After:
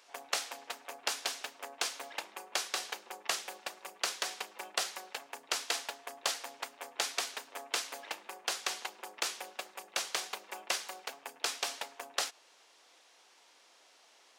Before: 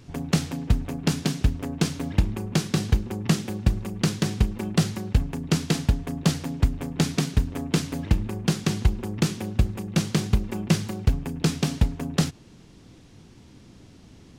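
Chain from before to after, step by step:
high-pass filter 620 Hz 24 dB per octave
level −2.5 dB

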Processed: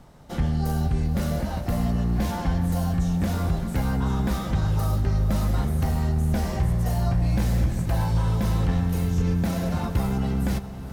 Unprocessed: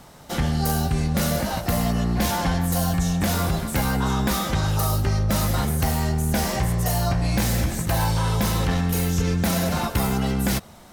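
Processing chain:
spectral tilt −2 dB per octave
feedback delay with all-pass diffusion 489 ms, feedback 62%, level −13 dB
level −7 dB

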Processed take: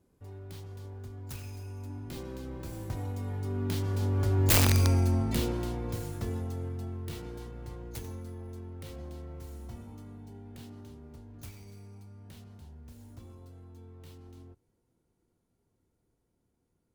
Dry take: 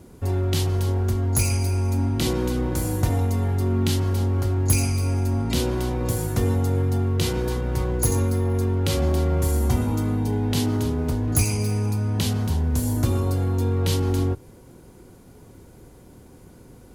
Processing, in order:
stylus tracing distortion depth 0.37 ms
source passing by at 0:04.73, 15 m/s, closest 5.4 metres
wrap-around overflow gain 16 dB

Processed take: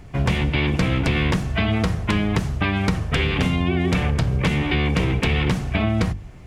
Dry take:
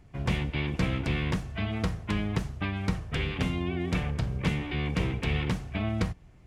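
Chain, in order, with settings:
mains-hum notches 50/100/150/200/250/300/350 Hz
in parallel at 0 dB: brickwall limiter −22 dBFS, peak gain reduction 7 dB
on the sum: downward compressor, threshold −24 dBFS, peak gain reduction 6 dB
level +8 dB

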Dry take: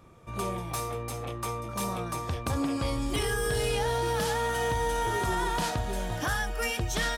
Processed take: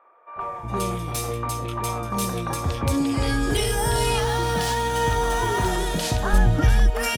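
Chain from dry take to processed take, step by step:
0:03.79–0:05.30: running median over 3 samples
0:05.97–0:06.54: spectral tilt −2.5 dB per octave
three-band delay without the direct sound mids, lows, highs 360/410 ms, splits 600/1,800 Hz
level +7.5 dB

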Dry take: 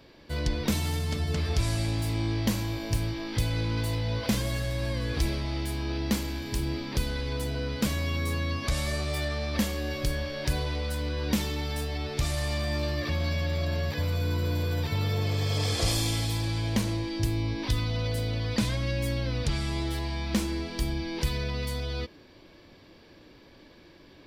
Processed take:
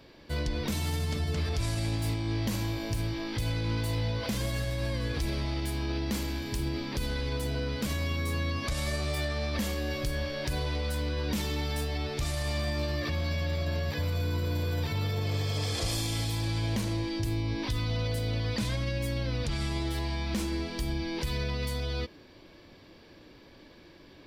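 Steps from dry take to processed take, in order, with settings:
brickwall limiter −22 dBFS, peak gain reduction 7 dB

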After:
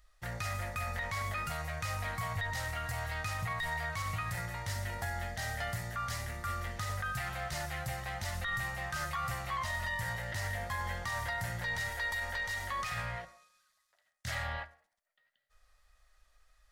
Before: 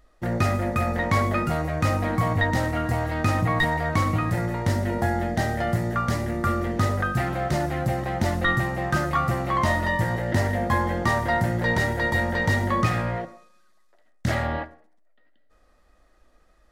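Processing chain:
guitar amp tone stack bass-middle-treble 10-0-10
brickwall limiter −27 dBFS, peak gain reduction 11.5 dB
0:11.89–0:12.92: parametric band 130 Hz −13 dB 1.2 octaves

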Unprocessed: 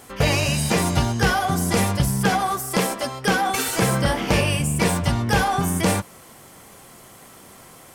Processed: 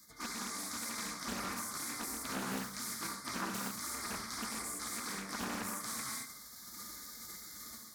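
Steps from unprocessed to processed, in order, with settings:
automatic gain control gain up to 10 dB
gain into a clipping stage and back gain 7 dB
high-pass filter 66 Hz 12 dB per octave
low-shelf EQ 370 Hz −9 dB
gate on every frequency bin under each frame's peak −15 dB weak
reverb whose tail is shaped and stops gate 260 ms flat, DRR 3.5 dB
reversed playback
downward compressor 12 to 1, threshold −36 dBFS, peak gain reduction 18 dB
reversed playback
Butterworth band-reject 2,700 Hz, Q 1.2
hollow resonant body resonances 220/1,200/2,100 Hz, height 16 dB, ringing for 45 ms
on a send: feedback echo with a high-pass in the loop 68 ms, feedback 63%, level −12.5 dB
on the sum: dynamic equaliser 550 Hz, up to −4 dB, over −52 dBFS, Q 0.78
highs frequency-modulated by the lows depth 0.7 ms
level −1.5 dB

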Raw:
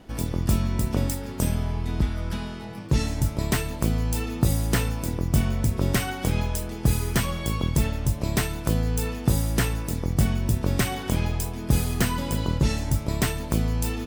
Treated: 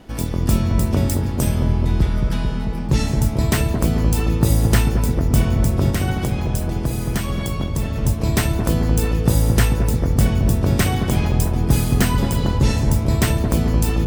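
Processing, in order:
0:05.89–0:07.96: downward compressor 2.5 to 1, threshold −27 dBFS, peak gain reduction 8 dB
delay with a low-pass on its return 221 ms, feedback 74%, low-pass 840 Hz, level −4 dB
level +4.5 dB

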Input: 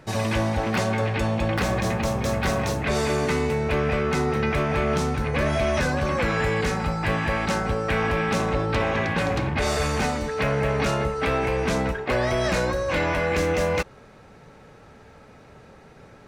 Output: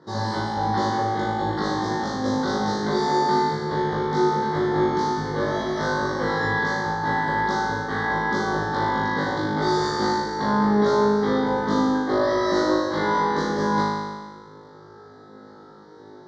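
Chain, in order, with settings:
Butterworth band-reject 2,600 Hz, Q 1.3
loudspeaker in its box 190–4,800 Hz, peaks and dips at 360 Hz +4 dB, 640 Hz −10 dB, 1,500 Hz −5 dB, 2,300 Hz −8 dB
flutter between parallel walls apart 3.3 metres, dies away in 1.5 s
level −1.5 dB

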